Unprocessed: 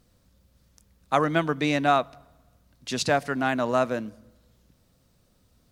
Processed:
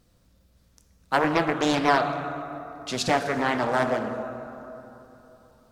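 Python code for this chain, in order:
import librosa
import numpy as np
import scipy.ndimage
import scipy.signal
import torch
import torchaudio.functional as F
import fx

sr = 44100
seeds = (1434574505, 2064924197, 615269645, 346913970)

y = fx.rev_plate(x, sr, seeds[0], rt60_s=3.4, hf_ratio=0.45, predelay_ms=0, drr_db=5.5)
y = fx.doppler_dist(y, sr, depth_ms=0.61)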